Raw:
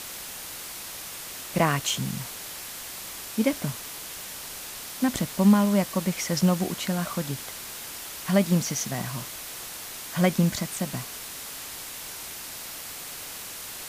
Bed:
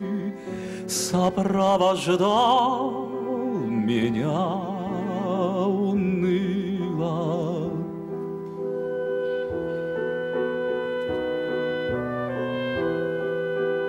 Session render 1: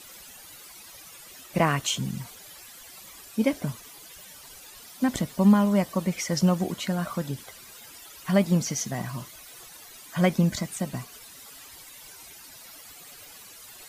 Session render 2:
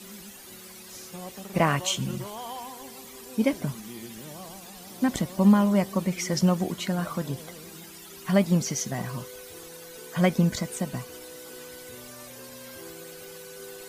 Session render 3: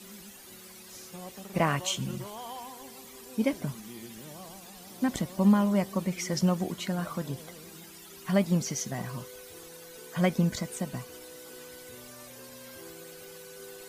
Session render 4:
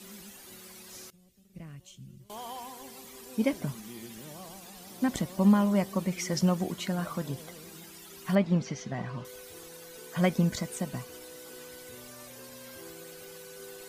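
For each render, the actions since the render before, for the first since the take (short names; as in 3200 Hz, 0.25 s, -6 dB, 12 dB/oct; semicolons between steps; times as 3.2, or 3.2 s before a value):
denoiser 14 dB, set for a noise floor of -39 dBFS
add bed -19 dB
gain -3.5 dB
1.1–2.3 passive tone stack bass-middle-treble 10-0-1; 8.35–9.25 LPF 3300 Hz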